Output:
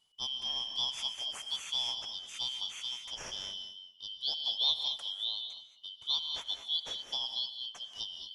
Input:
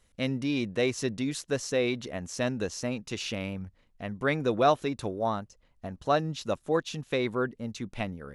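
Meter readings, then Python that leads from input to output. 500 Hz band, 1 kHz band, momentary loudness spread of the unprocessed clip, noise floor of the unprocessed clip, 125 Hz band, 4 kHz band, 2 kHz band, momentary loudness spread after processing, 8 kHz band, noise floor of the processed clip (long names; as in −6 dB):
−29.0 dB, −18.0 dB, 10 LU, −66 dBFS, below −25 dB, +10.0 dB, −17.0 dB, 9 LU, −5.5 dB, −60 dBFS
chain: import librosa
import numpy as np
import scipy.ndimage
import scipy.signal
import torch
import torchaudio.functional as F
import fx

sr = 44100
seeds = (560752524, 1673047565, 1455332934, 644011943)

p1 = fx.band_shuffle(x, sr, order='3412')
p2 = p1 + fx.echo_feedback(p1, sr, ms=202, feedback_pct=20, wet_db=-17, dry=0)
p3 = fx.rev_gated(p2, sr, seeds[0], gate_ms=250, shape='rising', drr_db=6.0)
y = p3 * librosa.db_to_amplitude(-8.0)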